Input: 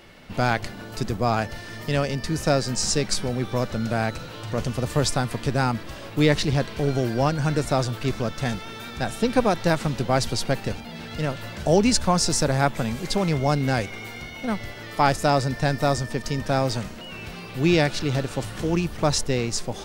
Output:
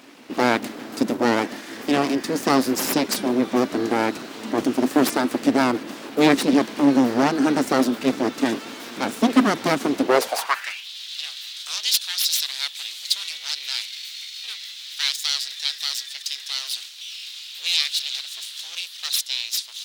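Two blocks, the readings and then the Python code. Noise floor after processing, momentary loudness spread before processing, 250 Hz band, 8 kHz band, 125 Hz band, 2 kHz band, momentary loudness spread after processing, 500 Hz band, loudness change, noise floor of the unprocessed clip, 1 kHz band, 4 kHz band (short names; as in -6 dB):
-39 dBFS, 12 LU, +4.0 dB, +1.0 dB, -14.0 dB, +1.5 dB, 13 LU, -0.5 dB, +1.5 dB, -38 dBFS, 0.0 dB, +6.5 dB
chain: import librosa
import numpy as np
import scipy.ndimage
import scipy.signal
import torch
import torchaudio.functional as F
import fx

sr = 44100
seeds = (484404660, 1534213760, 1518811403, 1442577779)

y = np.abs(x)
y = fx.filter_sweep_highpass(y, sr, from_hz=260.0, to_hz=3700.0, start_s=10.02, end_s=10.88, q=3.6)
y = y * librosa.db_to_amplitude(3.5)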